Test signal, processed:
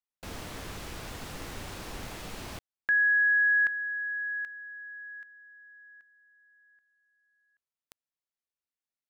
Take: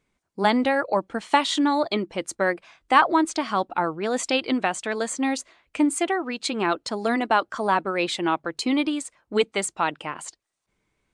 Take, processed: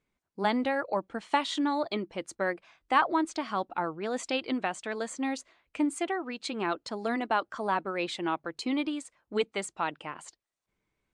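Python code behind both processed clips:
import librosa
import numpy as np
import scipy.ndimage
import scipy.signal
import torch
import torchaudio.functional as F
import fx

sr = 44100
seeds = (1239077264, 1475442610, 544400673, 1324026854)

y = fx.high_shelf(x, sr, hz=8000.0, db=-8.0)
y = y * 10.0 ** (-7.0 / 20.0)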